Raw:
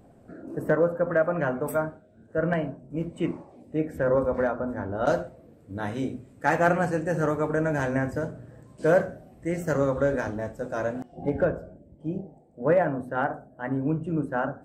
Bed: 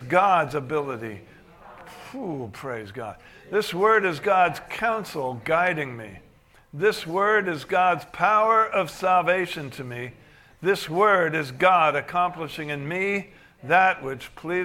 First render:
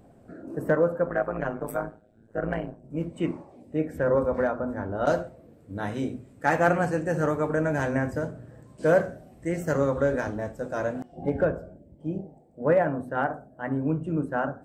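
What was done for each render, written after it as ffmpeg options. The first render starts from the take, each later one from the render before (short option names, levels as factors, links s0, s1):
-filter_complex "[0:a]asplit=3[s0][s1][s2];[s0]afade=t=out:st=1.06:d=0.02[s3];[s1]tremolo=f=110:d=0.857,afade=t=in:st=1.06:d=0.02,afade=t=out:st=2.83:d=0.02[s4];[s2]afade=t=in:st=2.83:d=0.02[s5];[s3][s4][s5]amix=inputs=3:normalize=0,asettb=1/sr,asplit=3[s6][s7][s8];[s6]atrim=end=9.044[s9];[s7]atrim=start=9.04:end=9.49,asetpts=PTS-STARTPTS,afade=t=in:d=0.004:c=qsin,afade=t=out:st=0.446:d=0.004:c=qsin,equalizer=f=6900:t=o:w=2.3:g=3.5[s10];[s8]atrim=start=9.486[s11];[s9][s10]acrossfade=d=0.004:c1=hsin:c2=qsin[s12];[s12][s11]acrossfade=d=0.004:c1=qsin:c2=hsin"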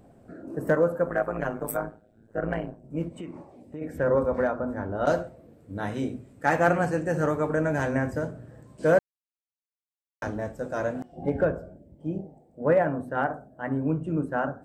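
-filter_complex "[0:a]asettb=1/sr,asplit=3[s0][s1][s2];[s0]atrim=end=0.674[s3];[s1]atrim=start=0.67:end=1.77,asetpts=PTS-STARTPTS,afade=t=in:d=0.004:c=qsin,afade=t=out:st=1.096:d=0.004:c=qsin,highshelf=f=6300:g=12[s4];[s2]atrim=start=1.766[s5];[s3][s4]acrossfade=d=0.004:c1=hsin:c2=qsin[s6];[s6][s5]acrossfade=d=0.004:c1=qsin:c2=hsin,asplit=3[s7][s8][s9];[s7]afade=t=out:st=3.08:d=0.02[s10];[s8]acompressor=threshold=0.02:ratio=6:attack=3.2:release=140:knee=1:detection=peak,afade=t=in:st=3.08:d=0.02,afade=t=out:st=3.81:d=0.02[s11];[s9]afade=t=in:st=3.81:d=0.02[s12];[s10][s11][s12]amix=inputs=3:normalize=0,asplit=3[s13][s14][s15];[s13]atrim=end=8.99,asetpts=PTS-STARTPTS,afade=t=out:st=8.986:d=0.004:c=hsin[s16];[s14]atrim=start=8.99:end=10.22,asetpts=PTS-STARTPTS,volume=0[s17];[s15]atrim=start=10.22,asetpts=PTS-STARTPTS,afade=t=in:d=0.004:c=hsin[s18];[s16][s17][s18]concat=n=3:v=0:a=1"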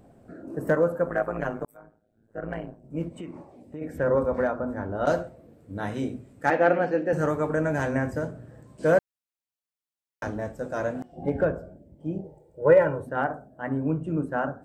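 -filter_complex "[0:a]asettb=1/sr,asplit=3[s0][s1][s2];[s0]atrim=end=6.504[s3];[s1]atrim=start=6.5:end=7.13,asetpts=PTS-STARTPTS,afade=t=in:d=0.004:c=qsin,afade=t=out:st=0.626:d=0.004:c=qsin,highpass=f=200:w=0.5412,highpass=f=200:w=1.3066,equalizer=f=300:t=q:w=4:g=3,equalizer=f=520:t=q:w=4:g=4,equalizer=f=1100:t=q:w=4:g=-7,lowpass=f=4300:w=0.5412,lowpass=f=4300:w=1.3066[s4];[s2]atrim=start=7.126[s5];[s3][s4]acrossfade=d=0.004:c1=hsin:c2=qsin[s6];[s6][s5]acrossfade=d=0.004:c1=qsin:c2=hsin,asettb=1/sr,asplit=3[s7][s8][s9];[s7]atrim=end=12.244[s10];[s8]atrim=start=12.24:end=13.07,asetpts=PTS-STARTPTS,afade=t=in:d=0.004:c=qsin,afade=t=out:st=0.826:d=0.004:c=qsin,aecho=1:1:2.1:0.97,atrim=end_sample=36603[s11];[s9]atrim=start=13.066[s12];[s10][s11]acrossfade=d=0.004:c1=hsin:c2=qsin[s13];[s13][s12]acrossfade=d=0.004:c1=qsin:c2=hsin,asplit=2[s14][s15];[s14]atrim=end=1.65,asetpts=PTS-STARTPTS,afade=t=out:st=1.646:d=0.004:c=hsin[s16];[s15]atrim=start=1.65,asetpts=PTS-STARTPTS,afade=t=in:d=1.42[s17];[s16][s17]concat=n=2:v=0:a=1"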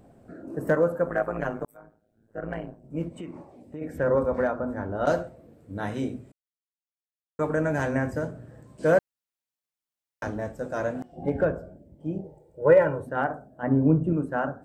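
-filter_complex "[0:a]asettb=1/sr,asplit=3[s0][s1][s2];[s0]atrim=end=13.634[s3];[s1]atrim=start=13.63:end=14.13,asetpts=PTS-STARTPTS,afade=t=in:d=0.004:c=qsin,afade=t=out:st=0.496:d=0.004:c=qsin,tiltshelf=f=1200:g=7[s4];[s2]atrim=start=14.126[s5];[s3][s4]acrossfade=d=0.004:c1=hsin:c2=qsin[s6];[s6][s5]acrossfade=d=0.004:c1=qsin:c2=hsin,asplit=3[s7][s8][s9];[s7]atrim=end=6.32,asetpts=PTS-STARTPTS,afade=t=out:st=6.316:d=0.004:c=hsin[s10];[s8]atrim=start=6.32:end=7.39,asetpts=PTS-STARTPTS,volume=0[s11];[s9]atrim=start=7.39,asetpts=PTS-STARTPTS,afade=t=in:d=0.004:c=hsin[s12];[s10][s11][s12]concat=n=3:v=0:a=1"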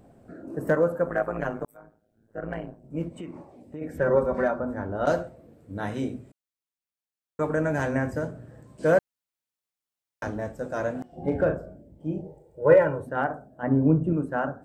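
-filter_complex "[0:a]asettb=1/sr,asplit=3[s0][s1][s2];[s0]atrim=end=4.004[s3];[s1]atrim=start=4:end=4.6,asetpts=PTS-STARTPTS,afade=t=in:d=0.004:c=qsin,afade=t=out:st=0.596:d=0.004:c=qsin,aecho=1:1:5.2:0.65,atrim=end_sample=26460[s4];[s2]atrim=start=4.596[s5];[s3][s4]acrossfade=d=0.004:c1=hsin:c2=qsin[s6];[s6][s5]acrossfade=d=0.004:c1=qsin:c2=hsin,asettb=1/sr,asplit=3[s7][s8][s9];[s7]atrim=end=11.084[s10];[s8]atrim=start=11.08:end=12.76,asetpts=PTS-STARTPTS,afade=t=in:d=0.004:c=qsin,afade=t=out:st=1.676:d=0.004:c=qsin,asplit=2[s11][s12];[s12]adelay=38,volume=0.473[s13];[s11][s13]amix=inputs=2:normalize=0,atrim=end_sample=74088[s14];[s9]atrim=start=12.756[s15];[s10][s14]acrossfade=d=0.004:c1=hsin:c2=qsin[s16];[s16][s15]acrossfade=d=0.004:c1=qsin:c2=hsin"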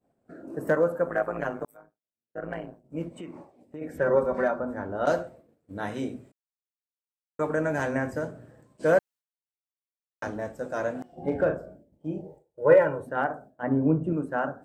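-af "agate=range=0.0224:threshold=0.00708:ratio=3:detection=peak,lowshelf=f=140:g=-10"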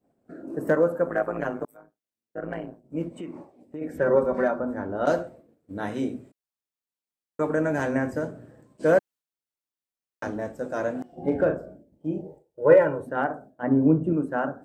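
-af "equalizer=f=290:t=o:w=1.4:g=4.5"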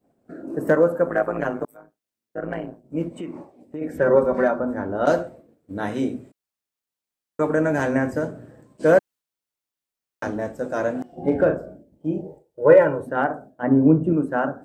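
-af "volume=1.58,alimiter=limit=0.708:level=0:latency=1"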